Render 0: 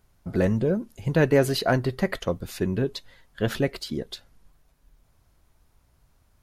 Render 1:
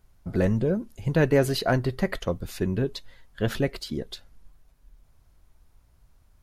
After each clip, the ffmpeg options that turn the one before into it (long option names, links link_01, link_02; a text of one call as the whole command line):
ffmpeg -i in.wav -af "lowshelf=frequency=61:gain=9,volume=-1.5dB" out.wav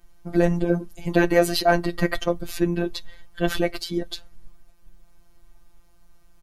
ffmpeg -i in.wav -af "aecho=1:1:3.2:0.67,afftfilt=real='hypot(re,im)*cos(PI*b)':imag='0':win_size=1024:overlap=0.75,volume=7dB" out.wav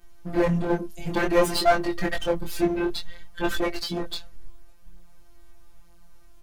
ffmpeg -i in.wav -af "aeval=exprs='clip(val(0),-1,0.0596)':channel_layout=same,flanger=delay=20:depth=6.1:speed=0.55,volume=5.5dB" out.wav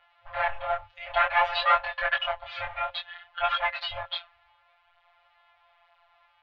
ffmpeg -i in.wav -af "afftfilt=real='re*(1-between(b*sr/4096,270,700))':imag='im*(1-between(b*sr/4096,270,700))':win_size=4096:overlap=0.75,highpass=frequency=300:width_type=q:width=0.5412,highpass=frequency=300:width_type=q:width=1.307,lowpass=frequency=3500:width_type=q:width=0.5176,lowpass=frequency=3500:width_type=q:width=0.7071,lowpass=frequency=3500:width_type=q:width=1.932,afreqshift=-170,volume=6.5dB" out.wav